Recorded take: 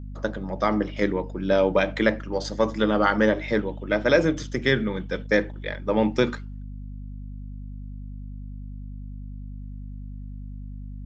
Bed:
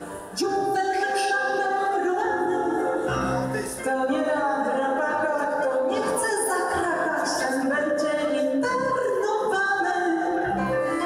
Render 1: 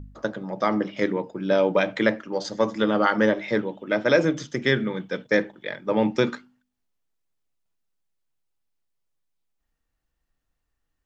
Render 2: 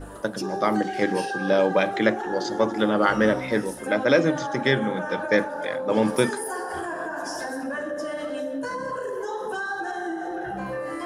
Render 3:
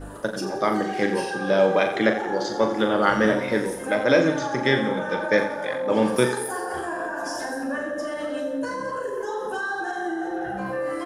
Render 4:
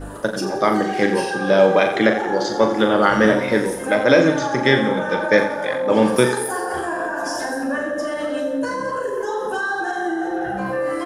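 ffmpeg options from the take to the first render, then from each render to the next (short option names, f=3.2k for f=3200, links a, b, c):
-af "bandreject=f=50:t=h:w=4,bandreject=f=100:t=h:w=4,bandreject=f=150:t=h:w=4,bandreject=f=200:t=h:w=4,bandreject=f=250:t=h:w=4"
-filter_complex "[1:a]volume=-6.5dB[a];[0:a][a]amix=inputs=2:normalize=0"
-filter_complex "[0:a]asplit=2[a][b];[b]adelay=40,volume=-7.5dB[c];[a][c]amix=inputs=2:normalize=0,aecho=1:1:88|176|264|352|440:0.282|0.13|0.0596|0.0274|0.0126"
-af "volume=5dB,alimiter=limit=-2dB:level=0:latency=1"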